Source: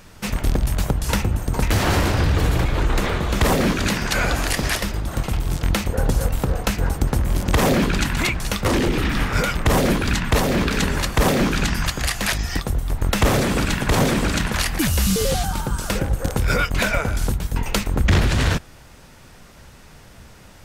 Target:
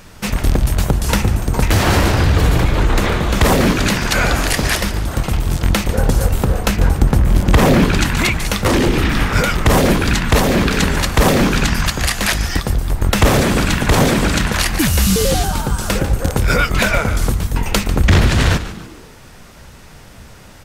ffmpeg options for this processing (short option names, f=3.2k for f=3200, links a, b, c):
-filter_complex "[0:a]asettb=1/sr,asplit=3[a][b][c];[a]atrim=end=6.714[d];[b]atrim=start=6.71:end=7.85,asetpts=PTS-STARTPTS,afade=t=in:d=0.004:c=qsin,afade=t=out:st=1.136:d=0.004:c=qsin,bass=f=250:g=3,treble=f=4k:g=-4[e];[c]atrim=start=7.846[f];[d][e]acrossfade=d=0.004:c1=hsin:c2=qsin[g];[g][f]acrossfade=d=0.004:c1=qsin:c2=hsin,asplit=5[h][i][j][k][l];[i]adelay=145,afreqshift=-130,volume=-13dB[m];[j]adelay=290,afreqshift=-260,volume=-20.3dB[n];[k]adelay=435,afreqshift=-390,volume=-27.7dB[o];[l]adelay=580,afreqshift=-520,volume=-35dB[p];[h][m][n][o][p]amix=inputs=5:normalize=0,volume=5dB"